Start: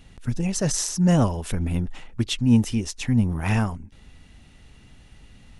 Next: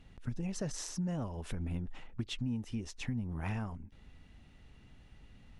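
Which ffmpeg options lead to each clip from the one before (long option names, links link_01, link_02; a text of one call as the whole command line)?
ffmpeg -i in.wav -af "lowpass=frequency=3000:poles=1,acompressor=threshold=-25dB:ratio=10,volume=-7.5dB" out.wav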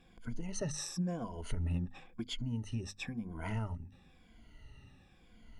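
ffmpeg -i in.wav -af "afftfilt=real='re*pow(10,16/40*sin(2*PI*(1.8*log(max(b,1)*sr/1024/100)/log(2)-(-0.97)*(pts-256)/sr)))':imag='im*pow(10,16/40*sin(2*PI*(1.8*log(max(b,1)*sr/1024/100)/log(2)-(-0.97)*(pts-256)/sr)))':win_size=1024:overlap=0.75,bandreject=frequency=50:width_type=h:width=6,bandreject=frequency=100:width_type=h:width=6,bandreject=frequency=150:width_type=h:width=6,bandreject=frequency=200:width_type=h:width=6,bandreject=frequency=250:width_type=h:width=6,volume=-2.5dB" out.wav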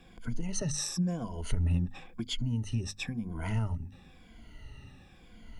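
ffmpeg -i in.wav -filter_complex "[0:a]acrossover=split=200|3000[link_01][link_02][link_03];[link_02]acompressor=threshold=-55dB:ratio=1.5[link_04];[link_01][link_04][link_03]amix=inputs=3:normalize=0,volume=7dB" out.wav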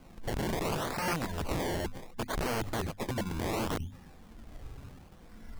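ffmpeg -i in.wav -af "acrusher=samples=24:mix=1:aa=0.000001:lfo=1:lforange=24:lforate=0.69,aeval=exprs='(mod(29.9*val(0)+1,2)-1)/29.9':channel_layout=same,volume=2.5dB" out.wav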